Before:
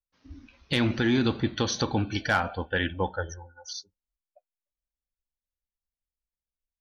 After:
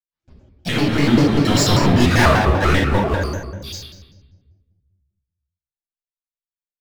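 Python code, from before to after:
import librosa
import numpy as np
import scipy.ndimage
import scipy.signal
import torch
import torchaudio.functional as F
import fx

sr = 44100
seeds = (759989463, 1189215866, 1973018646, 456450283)

y = fx.doppler_pass(x, sr, speed_mps=28, closest_m=11.0, pass_at_s=2.01)
y = fx.leveller(y, sr, passes=5)
y = fx.room_shoebox(y, sr, seeds[0], volume_m3=860.0, walls='mixed', distance_m=6.9)
y = fx.vibrato_shape(y, sr, shape='square', rate_hz=5.1, depth_cents=250.0)
y = F.gain(torch.from_numpy(y), -10.0).numpy()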